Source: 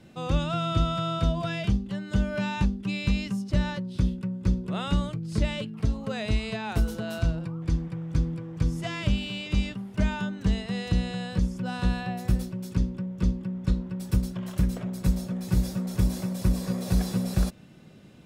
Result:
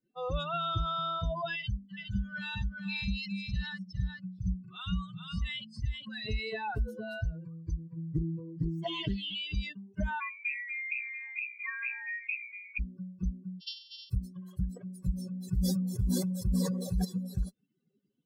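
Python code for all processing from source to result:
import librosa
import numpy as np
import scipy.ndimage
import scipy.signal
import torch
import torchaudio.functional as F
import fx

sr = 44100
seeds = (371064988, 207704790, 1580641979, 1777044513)

y = fx.chain(x, sr, fx.peak_eq(hz=510.0, db=-15.0, octaves=1.4),
    fx.echo_single(ms=411, db=-3.0), at=(1.56, 6.26))
y = fx.chain(y, sr, fx.comb(ms=6.2, depth=0.69),
    fx.doppler_dist(depth_ms=0.87), at=(7.96, 9.35))
y = fx.chain(y, sr, fx.median_filter(points=15),
    fx.highpass(hz=360.0, slope=6),
    fx.freq_invert(carrier_hz=2600), at=(10.2, 12.79))
y = fx.chain(y, sr, fx.sample_sort(block=128),
    fx.brickwall_bandpass(low_hz=2700.0, high_hz=5700.0),
    fx.band_squash(depth_pct=40), at=(13.6, 14.1))
y = fx.chain(y, sr, fx.echo_single(ms=419, db=-20.5),
    fx.sustainer(db_per_s=25.0), at=(15.12, 17.05))
y = fx.bin_expand(y, sr, power=3.0)
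y = fx.env_flatten(y, sr, amount_pct=50)
y = F.gain(torch.from_numpy(y), -5.0).numpy()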